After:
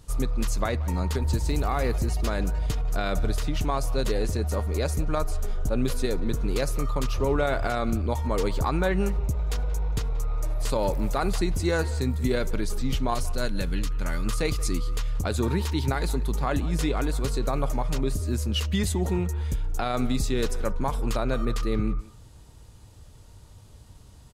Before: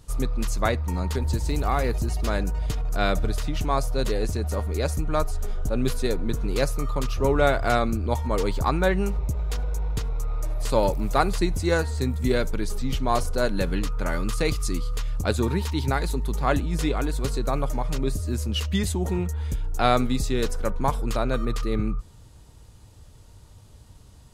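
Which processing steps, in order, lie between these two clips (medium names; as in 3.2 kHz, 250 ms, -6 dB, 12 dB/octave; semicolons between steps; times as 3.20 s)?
13.14–14.26 s: peaking EQ 610 Hz -8 dB 2.8 oct; peak limiter -14.5 dBFS, peak gain reduction 10.5 dB; speakerphone echo 180 ms, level -16 dB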